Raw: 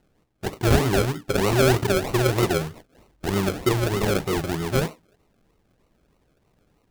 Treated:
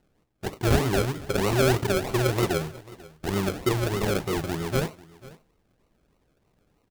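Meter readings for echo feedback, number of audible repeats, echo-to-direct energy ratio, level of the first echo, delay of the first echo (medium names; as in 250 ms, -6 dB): no regular repeats, 1, -20.5 dB, -20.5 dB, 492 ms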